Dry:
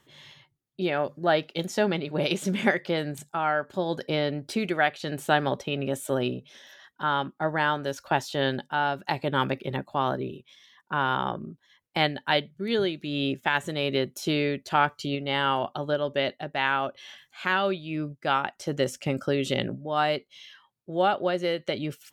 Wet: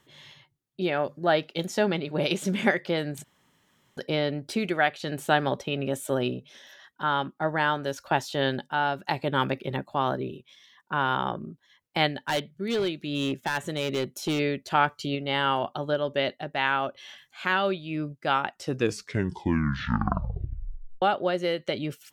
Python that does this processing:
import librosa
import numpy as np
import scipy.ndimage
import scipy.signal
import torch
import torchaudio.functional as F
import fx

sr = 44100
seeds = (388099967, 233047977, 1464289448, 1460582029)

y = fx.clip_hard(x, sr, threshold_db=-22.0, at=(12.09, 14.38), fade=0.02)
y = fx.edit(y, sr, fx.room_tone_fill(start_s=3.24, length_s=0.73),
    fx.tape_stop(start_s=18.5, length_s=2.52), tone=tone)